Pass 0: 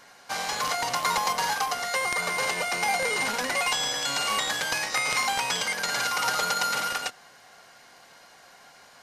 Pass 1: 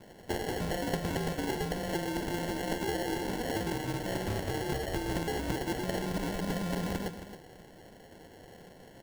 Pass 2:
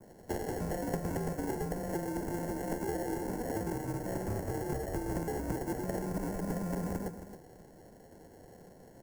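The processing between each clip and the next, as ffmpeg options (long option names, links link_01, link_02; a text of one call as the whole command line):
ffmpeg -i in.wav -filter_complex "[0:a]acompressor=threshold=-30dB:ratio=6,acrusher=samples=36:mix=1:aa=0.000001,asplit=2[link_01][link_02];[link_02]aecho=0:1:270:0.282[link_03];[link_01][link_03]amix=inputs=2:normalize=0" out.wav
ffmpeg -i in.wav -filter_complex "[0:a]adynamicequalizer=threshold=0.00126:dfrequency=3700:dqfactor=1.5:tfrequency=3700:tqfactor=1.5:attack=5:release=100:ratio=0.375:range=4:mode=cutabove:tftype=bell,acrossover=split=190|670|4500[link_01][link_02][link_03][link_04];[link_03]adynamicsmooth=sensitivity=1.5:basefreq=1700[link_05];[link_01][link_02][link_05][link_04]amix=inputs=4:normalize=0,volume=-1.5dB" out.wav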